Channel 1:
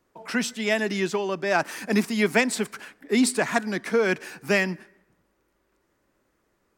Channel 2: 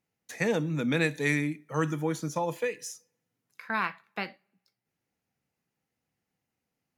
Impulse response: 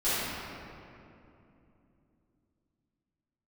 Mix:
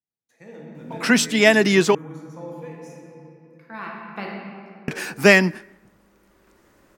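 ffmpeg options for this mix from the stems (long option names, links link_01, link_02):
-filter_complex "[0:a]adelay=750,volume=3dB,asplit=3[link_01][link_02][link_03];[link_01]atrim=end=1.95,asetpts=PTS-STARTPTS,afade=type=out:start_time=1.946:duration=0.004:curve=hsin[link_04];[link_02]atrim=start=1.95:end=4.88,asetpts=PTS-STARTPTS,volume=0[link_05];[link_03]atrim=start=4.88,asetpts=PTS-STARTPTS,afade=type=in:duration=0.004:curve=hsin[link_06];[link_04][link_05][link_06]concat=n=3:v=0:a=1[link_07];[1:a]tiltshelf=frequency=1200:gain=4,volume=-12.5dB,afade=type=in:start_time=3.68:duration=0.51:silence=0.266073,asplit=2[link_08][link_09];[link_09]volume=-8dB[link_10];[2:a]atrim=start_sample=2205[link_11];[link_10][link_11]afir=irnorm=-1:irlink=0[link_12];[link_07][link_08][link_12]amix=inputs=3:normalize=0,dynaudnorm=framelen=310:gausssize=5:maxgain=10.5dB"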